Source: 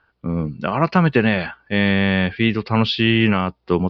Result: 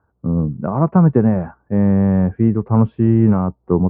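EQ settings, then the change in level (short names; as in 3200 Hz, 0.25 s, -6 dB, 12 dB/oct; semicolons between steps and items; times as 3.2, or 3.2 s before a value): HPF 64 Hz; LPF 1100 Hz 24 dB/oct; low shelf 230 Hz +9.5 dB; -1.0 dB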